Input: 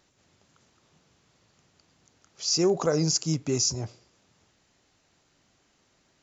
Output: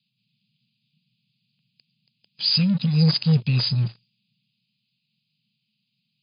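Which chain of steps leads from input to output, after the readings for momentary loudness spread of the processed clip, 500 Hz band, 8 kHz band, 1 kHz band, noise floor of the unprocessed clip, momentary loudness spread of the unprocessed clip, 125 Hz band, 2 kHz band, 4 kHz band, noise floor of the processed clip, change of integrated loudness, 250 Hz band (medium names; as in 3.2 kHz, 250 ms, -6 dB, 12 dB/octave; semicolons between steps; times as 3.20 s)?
6 LU, -11.0 dB, no reading, -7.0 dB, -68 dBFS, 10 LU, +12.0 dB, +6.0 dB, +6.5 dB, -77 dBFS, +5.0 dB, +6.5 dB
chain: Chebyshev band-stop 220–2500 Hz, order 5; waveshaping leveller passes 3; FFT band-pass 110–5000 Hz; trim +3 dB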